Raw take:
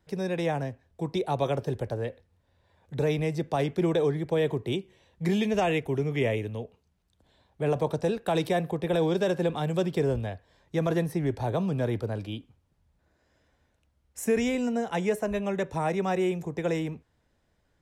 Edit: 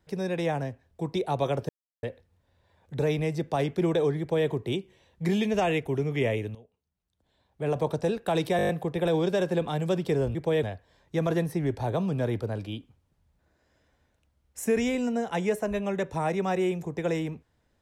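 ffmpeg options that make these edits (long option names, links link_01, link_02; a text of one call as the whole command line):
ffmpeg -i in.wav -filter_complex "[0:a]asplit=12[link_01][link_02][link_03][link_04][link_05][link_06][link_07][link_08][link_09][link_10][link_11][link_12];[link_01]atrim=end=1.69,asetpts=PTS-STARTPTS,afade=type=out:start_time=1.686:duration=0.004:curve=hsin[link_13];[link_02]atrim=start=1.69:end=2.03,asetpts=PTS-STARTPTS,volume=0[link_14];[link_03]atrim=start=2.03:end=6.55,asetpts=PTS-STARTPTS,afade=type=in:duration=0.004:curve=hsin,afade=type=out:start_time=4.516:duration=0.004:curve=hsin:silence=0.149624[link_15];[link_04]atrim=start=6.55:end=8.592,asetpts=PTS-STARTPTS,afade=type=in:duration=1.28:curve=qua:silence=0.149624[link_16];[link_05]atrim=start=8.568:end=8.592[link_17];[link_06]atrim=start=8.568:end=8.592[link_18];[link_07]atrim=start=8.568:end=8.592[link_19];[link_08]atrim=start=8.568:end=8.592[link_20];[link_09]atrim=start=8.568:end=8.592[link_21];[link_10]atrim=start=8.568:end=10.232[link_22];[link_11]atrim=start=4.198:end=4.482[link_23];[link_12]atrim=start=10.228[link_24];[link_13][link_14][link_15][link_16]concat=n=4:v=0:a=1[link_25];[link_25][link_17]acrossfade=duration=0.004:curve1=hsin:curve2=hsin[link_26];[link_26][link_18]acrossfade=duration=0.004:curve1=hsin:curve2=hsin[link_27];[link_27][link_19]acrossfade=duration=0.004:curve1=hsin:curve2=hsin[link_28];[link_28][link_20]acrossfade=duration=0.004:curve1=hsin:curve2=hsin[link_29];[link_29][link_21]acrossfade=duration=0.004:curve1=hsin:curve2=hsin[link_30];[link_30][link_22]acrossfade=duration=0.004:curve1=hsin:curve2=hsin[link_31];[link_31][link_23]acrossfade=duration=0.004:curve1=hsin:curve2=hsin[link_32];[link_32][link_24]acrossfade=duration=0.004:curve1=hsin:curve2=hsin" out.wav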